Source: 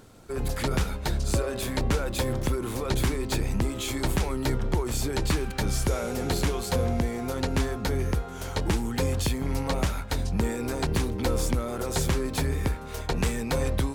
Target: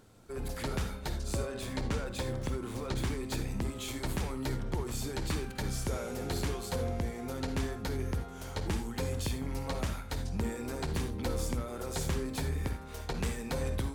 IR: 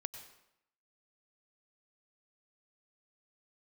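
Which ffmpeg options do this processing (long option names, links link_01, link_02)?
-filter_complex "[0:a]asettb=1/sr,asplit=3[link_01][link_02][link_03];[link_01]atrim=end=1.474[link_04];[link_02]atrim=start=1.47:end=3.1,asetpts=PTS-STARTPTS,afade=type=in:duration=0.004:curve=qsin,afade=type=out:start_time=1.626:duration=0.004:curve=qsin,equalizer=frequency=13000:width=1.2:gain=-8[link_05];[link_03]atrim=start=3.096[link_06];[link_04][link_05]acrossfade=duration=0.004:curve1=hsin:curve2=qsin[link_07];[link_07][link_06]acrossfade=duration=0.004:curve1=qsin:curve2=hsin[link_08];[1:a]atrim=start_sample=2205,afade=type=out:start_time=0.24:duration=0.01,atrim=end_sample=11025,asetrate=83790,aresample=44100[link_09];[link_08][link_09]afir=irnorm=-1:irlink=0"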